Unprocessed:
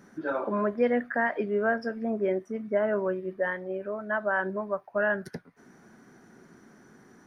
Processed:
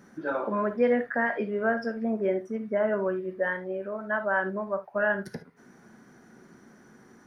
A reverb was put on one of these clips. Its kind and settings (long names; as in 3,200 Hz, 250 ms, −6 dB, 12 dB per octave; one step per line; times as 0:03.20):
reverb whose tail is shaped and stops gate 90 ms flat, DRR 8.5 dB